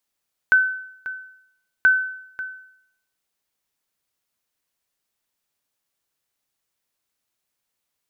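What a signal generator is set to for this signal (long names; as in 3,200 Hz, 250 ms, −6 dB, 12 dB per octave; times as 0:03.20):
ping with an echo 1,520 Hz, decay 0.71 s, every 1.33 s, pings 2, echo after 0.54 s, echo −15.5 dB −8.5 dBFS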